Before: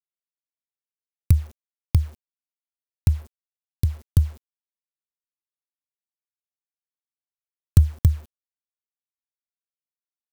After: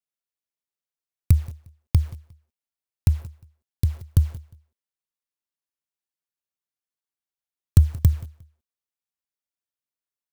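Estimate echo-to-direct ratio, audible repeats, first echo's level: -20.0 dB, 2, -20.0 dB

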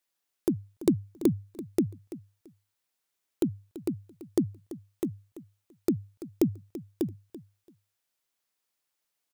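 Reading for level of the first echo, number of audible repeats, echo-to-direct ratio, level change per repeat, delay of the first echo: -15.5 dB, 2, -15.5 dB, -14.0 dB, 336 ms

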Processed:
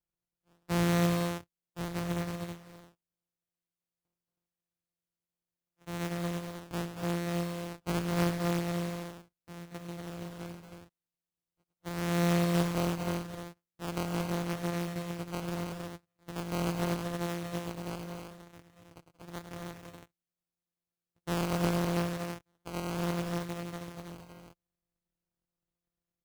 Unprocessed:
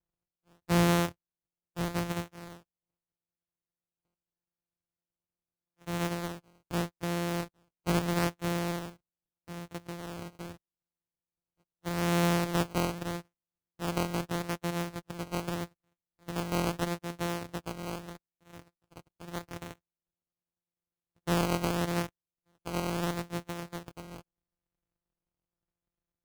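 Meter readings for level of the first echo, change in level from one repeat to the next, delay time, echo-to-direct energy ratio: -10.0 dB, no regular repeats, 105 ms, -1.5 dB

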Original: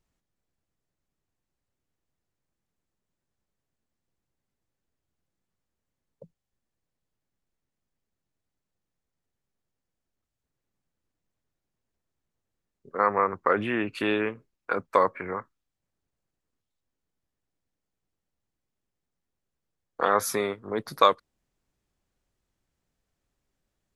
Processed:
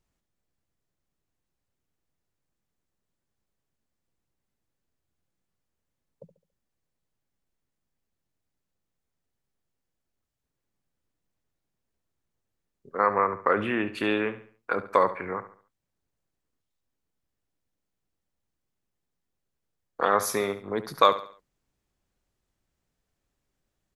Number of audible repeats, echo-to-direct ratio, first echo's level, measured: 3, -13.0 dB, -13.5 dB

